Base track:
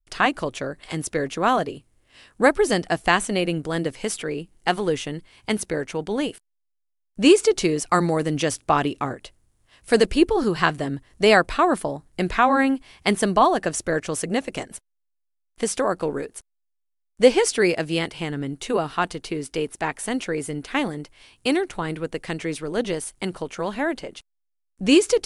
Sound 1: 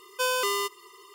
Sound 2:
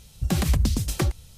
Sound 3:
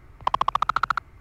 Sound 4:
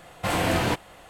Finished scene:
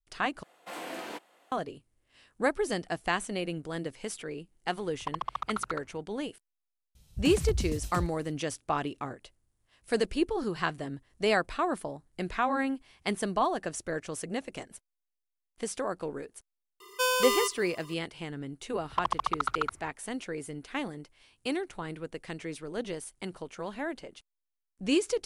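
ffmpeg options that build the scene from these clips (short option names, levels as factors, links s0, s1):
-filter_complex "[3:a]asplit=2[s0][s1];[0:a]volume=0.299[s2];[4:a]highpass=f=250:w=0.5412,highpass=f=250:w=1.3066[s3];[2:a]lowshelf=f=180:g=5[s4];[s2]asplit=2[s5][s6];[s5]atrim=end=0.434[s7];[s3]atrim=end=1.09,asetpts=PTS-STARTPTS,volume=0.188[s8];[s6]atrim=start=1.516[s9];[s0]atrim=end=1.2,asetpts=PTS-STARTPTS,volume=0.251,afade=t=in:d=0.004:c=hsin,afade=t=out:st=1.196:d=0.004:c=hsin,adelay=4800[s10];[s4]atrim=end=1.37,asetpts=PTS-STARTPTS,volume=0.211,afade=t=in:d=0.004:c=hsin,afade=t=out:st=1.366:d=0.004:c=hsin,adelay=6950[s11];[1:a]atrim=end=1.14,asetpts=PTS-STARTPTS,volume=0.944,afade=t=in:d=0.004:c=hsin,afade=t=out:st=1.136:d=0.004:c=hsin,adelay=16800[s12];[s1]atrim=end=1.2,asetpts=PTS-STARTPTS,volume=0.447,afade=t=in:d=0.004:c=hsin,afade=t=out:st=1.196:d=0.004:c=hsin,adelay=18710[s13];[s7][s8]acrossfade=d=0.004:c1=hsin:c2=hsin[s14];[s14][s9]acrossfade=d=0.004:c1=hsin:c2=hsin[s15];[s15][s10][s11][s12][s13]amix=inputs=5:normalize=0"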